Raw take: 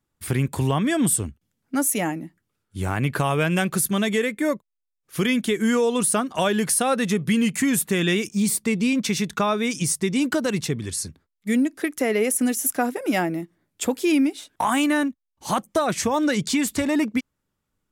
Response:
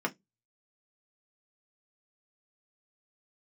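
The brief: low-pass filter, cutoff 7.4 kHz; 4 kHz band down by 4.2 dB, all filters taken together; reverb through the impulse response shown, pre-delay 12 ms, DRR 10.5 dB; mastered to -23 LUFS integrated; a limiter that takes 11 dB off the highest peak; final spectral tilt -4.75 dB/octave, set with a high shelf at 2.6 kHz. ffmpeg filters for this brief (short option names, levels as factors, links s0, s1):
-filter_complex "[0:a]lowpass=7400,highshelf=f=2600:g=4,equalizer=f=4000:t=o:g=-9,alimiter=limit=0.0891:level=0:latency=1,asplit=2[s0][s1];[1:a]atrim=start_sample=2205,adelay=12[s2];[s1][s2]afir=irnorm=-1:irlink=0,volume=0.133[s3];[s0][s3]amix=inputs=2:normalize=0,volume=2"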